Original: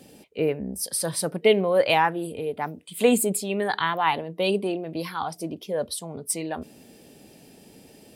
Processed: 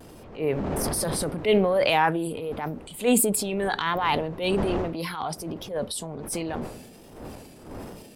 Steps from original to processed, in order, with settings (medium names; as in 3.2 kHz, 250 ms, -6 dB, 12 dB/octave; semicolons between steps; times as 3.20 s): wind noise 480 Hz -38 dBFS; vibrato 1.3 Hz 59 cents; transient shaper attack -9 dB, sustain +6 dB